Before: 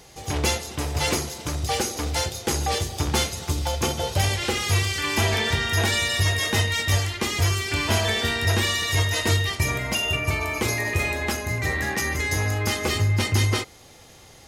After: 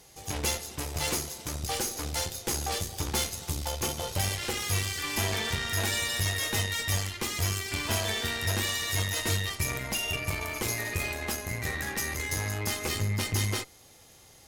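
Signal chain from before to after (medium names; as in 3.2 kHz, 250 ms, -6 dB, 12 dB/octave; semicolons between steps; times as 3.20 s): treble shelf 8 kHz +11 dB; Chebyshev shaper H 8 -20 dB, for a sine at -7 dBFS; trim -8.5 dB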